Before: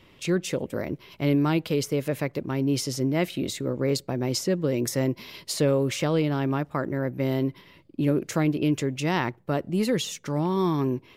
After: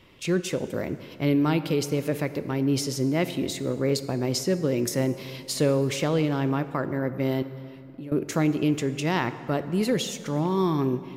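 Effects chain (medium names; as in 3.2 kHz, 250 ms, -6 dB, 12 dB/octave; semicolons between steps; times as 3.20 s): 7.42–8.12 s: compression 3:1, threshold -42 dBFS, peak gain reduction 17 dB; plate-style reverb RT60 2.6 s, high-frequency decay 0.6×, DRR 11.5 dB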